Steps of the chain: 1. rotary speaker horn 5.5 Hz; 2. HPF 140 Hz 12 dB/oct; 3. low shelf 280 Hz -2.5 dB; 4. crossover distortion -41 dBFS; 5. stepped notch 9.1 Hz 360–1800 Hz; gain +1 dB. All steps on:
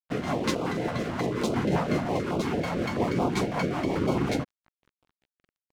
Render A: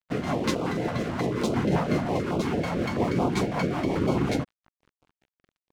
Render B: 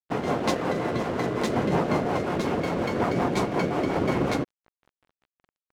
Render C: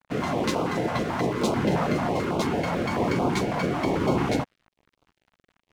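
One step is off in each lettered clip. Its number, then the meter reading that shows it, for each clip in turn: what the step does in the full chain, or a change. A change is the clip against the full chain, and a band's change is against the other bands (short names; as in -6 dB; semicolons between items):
3, loudness change +1.0 LU; 5, 1 kHz band +2.5 dB; 1, 1 kHz band +1.5 dB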